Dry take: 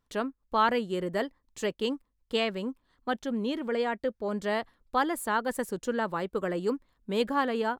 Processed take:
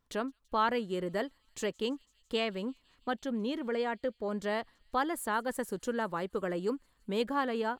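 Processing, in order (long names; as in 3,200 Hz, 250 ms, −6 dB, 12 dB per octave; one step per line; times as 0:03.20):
in parallel at −0.5 dB: downward compressor, threshold −38 dBFS, peak gain reduction 18 dB
on the sum: delay with a high-pass on its return 167 ms, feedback 77%, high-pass 4,100 Hz, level −23 dB
level −5.5 dB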